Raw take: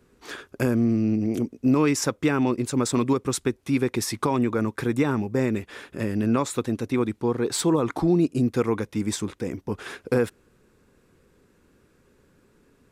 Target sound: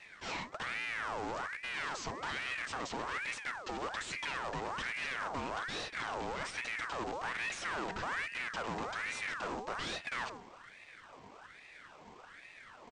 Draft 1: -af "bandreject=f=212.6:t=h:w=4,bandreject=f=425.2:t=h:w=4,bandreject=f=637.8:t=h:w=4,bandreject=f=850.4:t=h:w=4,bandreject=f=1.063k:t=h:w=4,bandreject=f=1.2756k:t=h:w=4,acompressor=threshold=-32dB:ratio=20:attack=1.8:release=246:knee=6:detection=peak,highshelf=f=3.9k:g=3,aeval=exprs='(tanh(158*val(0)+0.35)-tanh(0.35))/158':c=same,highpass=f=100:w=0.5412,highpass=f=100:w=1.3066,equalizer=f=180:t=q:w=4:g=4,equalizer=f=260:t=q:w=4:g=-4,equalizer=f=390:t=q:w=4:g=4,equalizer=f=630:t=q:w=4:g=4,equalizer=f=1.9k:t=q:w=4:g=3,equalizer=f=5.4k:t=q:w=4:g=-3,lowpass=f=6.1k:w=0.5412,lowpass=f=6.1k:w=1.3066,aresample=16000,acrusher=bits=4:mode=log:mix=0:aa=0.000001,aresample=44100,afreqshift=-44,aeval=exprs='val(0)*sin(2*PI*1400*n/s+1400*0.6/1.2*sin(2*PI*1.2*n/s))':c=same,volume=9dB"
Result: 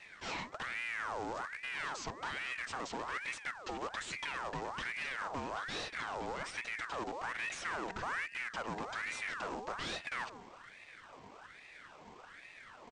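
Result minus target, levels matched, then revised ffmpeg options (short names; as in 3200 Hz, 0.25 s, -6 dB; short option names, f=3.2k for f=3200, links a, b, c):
compressor: peak gain reduction +9 dB
-af "bandreject=f=212.6:t=h:w=4,bandreject=f=425.2:t=h:w=4,bandreject=f=637.8:t=h:w=4,bandreject=f=850.4:t=h:w=4,bandreject=f=1.063k:t=h:w=4,bandreject=f=1.2756k:t=h:w=4,acompressor=threshold=-22.5dB:ratio=20:attack=1.8:release=246:knee=6:detection=peak,highshelf=f=3.9k:g=3,aeval=exprs='(tanh(158*val(0)+0.35)-tanh(0.35))/158':c=same,highpass=f=100:w=0.5412,highpass=f=100:w=1.3066,equalizer=f=180:t=q:w=4:g=4,equalizer=f=260:t=q:w=4:g=-4,equalizer=f=390:t=q:w=4:g=4,equalizer=f=630:t=q:w=4:g=4,equalizer=f=1.9k:t=q:w=4:g=3,equalizer=f=5.4k:t=q:w=4:g=-3,lowpass=f=6.1k:w=0.5412,lowpass=f=6.1k:w=1.3066,aresample=16000,acrusher=bits=4:mode=log:mix=0:aa=0.000001,aresample=44100,afreqshift=-44,aeval=exprs='val(0)*sin(2*PI*1400*n/s+1400*0.6/1.2*sin(2*PI*1.2*n/s))':c=same,volume=9dB"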